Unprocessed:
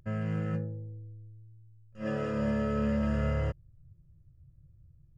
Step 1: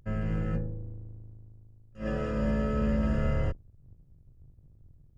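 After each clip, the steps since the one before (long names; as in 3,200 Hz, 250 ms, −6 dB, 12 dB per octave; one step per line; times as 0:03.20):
sub-octave generator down 2 octaves, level −1 dB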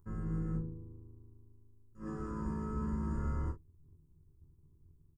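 drawn EQ curve 230 Hz 0 dB, 390 Hz +6 dB, 620 Hz −20 dB, 1,000 Hz +7 dB, 2,800 Hz −21 dB, 8,300 Hz +6 dB
ambience of single reflections 13 ms −6.5 dB, 25 ms −6 dB, 45 ms −10 dB
level −8.5 dB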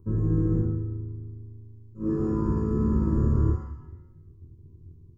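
convolution reverb RT60 1.0 s, pre-delay 3 ms, DRR 2 dB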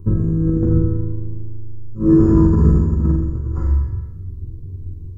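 low-shelf EQ 110 Hz +9.5 dB
compressor whose output falls as the input rises −22 dBFS, ratio −0.5
on a send: flutter between parallel walls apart 7.4 metres, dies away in 0.77 s
on the sum: level +6.5 dB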